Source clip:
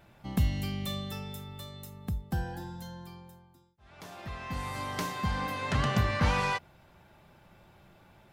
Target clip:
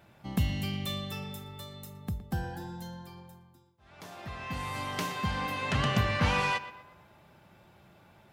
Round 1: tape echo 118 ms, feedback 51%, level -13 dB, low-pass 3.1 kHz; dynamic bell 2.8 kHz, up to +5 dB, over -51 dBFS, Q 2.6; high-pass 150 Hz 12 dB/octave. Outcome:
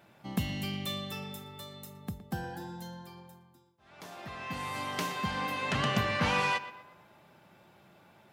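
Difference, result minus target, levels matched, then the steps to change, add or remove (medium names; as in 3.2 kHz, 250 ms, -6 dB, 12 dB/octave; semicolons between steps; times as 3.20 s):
125 Hz band -4.0 dB
change: high-pass 65 Hz 12 dB/octave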